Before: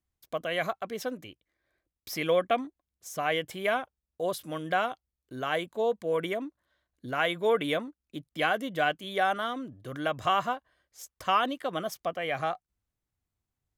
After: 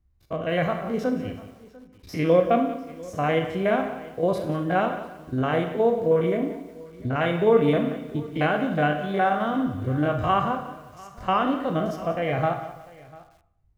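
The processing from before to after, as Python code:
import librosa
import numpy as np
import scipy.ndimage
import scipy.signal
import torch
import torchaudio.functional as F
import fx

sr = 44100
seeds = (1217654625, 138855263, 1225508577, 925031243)

p1 = fx.spec_steps(x, sr, hold_ms=50)
p2 = fx.notch(p1, sr, hz=3300.0, q=14.0)
p3 = p2 + fx.echo_single(p2, sr, ms=696, db=-22.0, dry=0)
p4 = fx.rev_schroeder(p3, sr, rt60_s=0.65, comb_ms=27, drr_db=6.0)
p5 = fx.rider(p4, sr, range_db=3, speed_s=0.5)
p6 = p4 + (p5 * librosa.db_to_amplitude(-3.0))
p7 = fx.riaa(p6, sr, side='playback')
y = fx.echo_crushed(p7, sr, ms=181, feedback_pct=35, bits=8, wet_db=-13.5)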